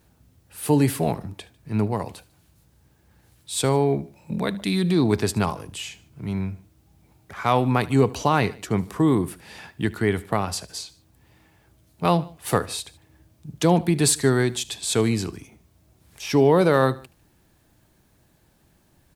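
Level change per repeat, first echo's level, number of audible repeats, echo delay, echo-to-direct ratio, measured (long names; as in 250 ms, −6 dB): −5.0 dB, −20.5 dB, 2, 75 ms, −19.5 dB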